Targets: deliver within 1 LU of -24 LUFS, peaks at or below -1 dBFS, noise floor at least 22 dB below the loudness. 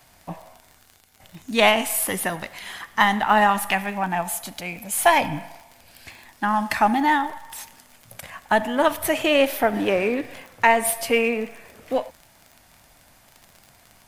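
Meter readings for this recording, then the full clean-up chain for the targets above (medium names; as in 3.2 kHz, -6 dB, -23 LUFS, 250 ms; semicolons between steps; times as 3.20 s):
tick rate 34 per s; loudness -21.5 LUFS; peak level -1.0 dBFS; loudness target -24.0 LUFS
-> de-click; trim -2.5 dB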